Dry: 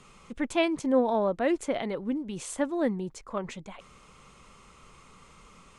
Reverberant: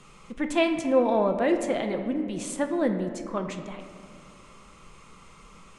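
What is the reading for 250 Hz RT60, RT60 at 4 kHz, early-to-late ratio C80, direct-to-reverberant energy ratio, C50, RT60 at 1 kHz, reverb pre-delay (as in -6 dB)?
2.9 s, 1.2 s, 9.0 dB, 5.0 dB, 7.5 dB, 1.9 s, 5 ms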